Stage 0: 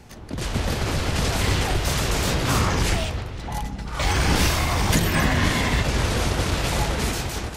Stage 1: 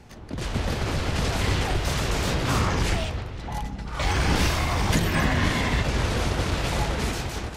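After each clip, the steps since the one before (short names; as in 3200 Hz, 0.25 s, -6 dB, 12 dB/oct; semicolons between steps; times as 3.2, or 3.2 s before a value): high shelf 7200 Hz -7.5 dB; gain -2 dB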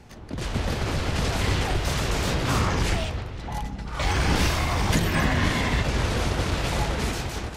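nothing audible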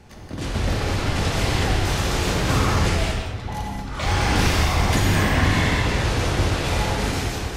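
non-linear reverb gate 0.26 s flat, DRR -1 dB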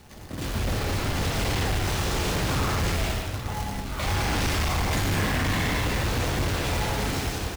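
overloaded stage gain 20.5 dB; companded quantiser 4-bit; echo 0.831 s -13.5 dB; gain -3.5 dB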